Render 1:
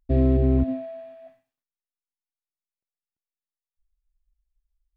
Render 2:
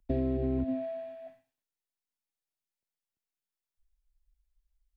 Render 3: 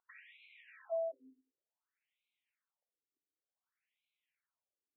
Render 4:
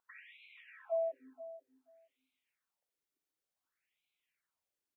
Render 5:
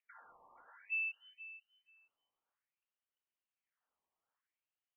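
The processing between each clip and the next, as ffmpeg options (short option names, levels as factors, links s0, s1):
-filter_complex "[0:a]acrossover=split=170|430[s0][s1][s2];[s0]alimiter=level_in=1.06:limit=0.0631:level=0:latency=1,volume=0.944[s3];[s3][s1][s2]amix=inputs=3:normalize=0,acompressor=threshold=0.0447:ratio=6,bandreject=f=1200:w=8"
-af "equalizer=f=2300:t=o:w=1.6:g=9.5,acompressor=threshold=0.0178:ratio=6,afftfilt=real='re*between(b*sr/1024,310*pow(3000/310,0.5+0.5*sin(2*PI*0.55*pts/sr))/1.41,310*pow(3000/310,0.5+0.5*sin(2*PI*0.55*pts/sr))*1.41)':imag='im*between(b*sr/1024,310*pow(3000/310,0.5+0.5*sin(2*PI*0.55*pts/sr))/1.41,310*pow(3000/310,0.5+0.5*sin(2*PI*0.55*pts/sr))*1.41)':win_size=1024:overlap=0.75,volume=1.68"
-filter_complex "[0:a]asplit=2[s0][s1];[s1]adelay=481,lowpass=f=850:p=1,volume=0.237,asplit=2[s2][s3];[s3]adelay=481,lowpass=f=850:p=1,volume=0.17[s4];[s0][s2][s4]amix=inputs=3:normalize=0,volume=1.33"
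-af "lowpass=f=2800:t=q:w=0.5098,lowpass=f=2800:t=q:w=0.6013,lowpass=f=2800:t=q:w=0.9,lowpass=f=2800:t=q:w=2.563,afreqshift=-3300,volume=0.668"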